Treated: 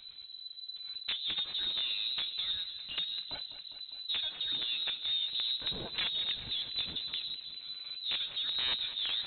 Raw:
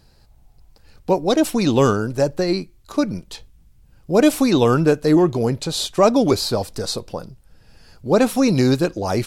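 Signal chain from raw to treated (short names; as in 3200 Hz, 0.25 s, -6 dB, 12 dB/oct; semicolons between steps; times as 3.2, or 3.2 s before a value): compressor 10:1, threshold -25 dBFS, peak gain reduction 16.5 dB; flange 0.31 Hz, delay 2.8 ms, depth 8.1 ms, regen +44%; wrapped overs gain 22.5 dB; power-law curve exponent 0.7; air absorption 95 m; echo with dull and thin repeats by turns 0.101 s, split 890 Hz, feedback 84%, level -11.5 dB; inverted band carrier 4000 Hz; gain -5 dB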